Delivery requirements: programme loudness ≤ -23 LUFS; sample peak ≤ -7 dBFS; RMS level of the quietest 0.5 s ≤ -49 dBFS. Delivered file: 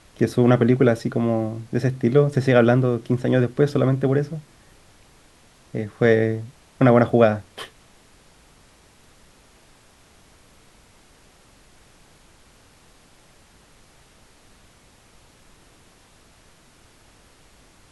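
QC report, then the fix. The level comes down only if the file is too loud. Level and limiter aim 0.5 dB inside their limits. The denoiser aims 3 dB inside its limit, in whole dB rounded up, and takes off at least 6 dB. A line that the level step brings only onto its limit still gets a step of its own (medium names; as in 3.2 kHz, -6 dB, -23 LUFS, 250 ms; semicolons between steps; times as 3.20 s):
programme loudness -20.0 LUFS: fail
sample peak -3.0 dBFS: fail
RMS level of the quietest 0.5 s -53 dBFS: pass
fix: trim -3.5 dB; peak limiter -7.5 dBFS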